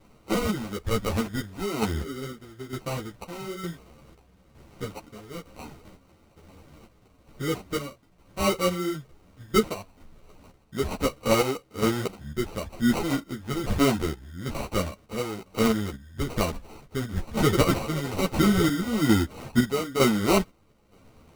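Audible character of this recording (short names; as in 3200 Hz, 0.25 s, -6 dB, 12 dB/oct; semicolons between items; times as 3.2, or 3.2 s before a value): chopped level 1.1 Hz, depth 60%, duty 55%; aliases and images of a low sample rate 1700 Hz, jitter 0%; a shimmering, thickened sound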